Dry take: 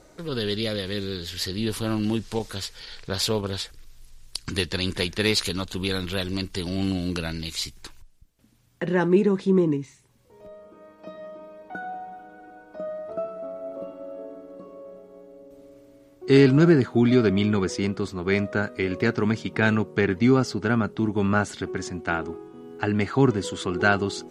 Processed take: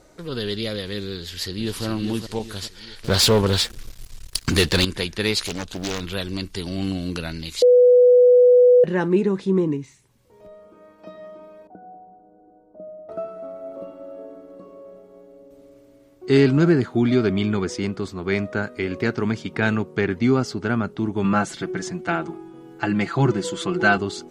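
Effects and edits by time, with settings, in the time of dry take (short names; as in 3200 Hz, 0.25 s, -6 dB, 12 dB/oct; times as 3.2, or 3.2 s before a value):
1.18–1.85 echo throw 0.41 s, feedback 45%, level -7 dB
3.04–4.85 sample leveller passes 3
5.46–6.01 Doppler distortion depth 0.7 ms
7.62–8.84 bleep 494 Hz -9 dBFS
11.67–13.09 ladder low-pass 800 Hz, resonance 20%
21.24–23.98 comb 5.9 ms, depth 90%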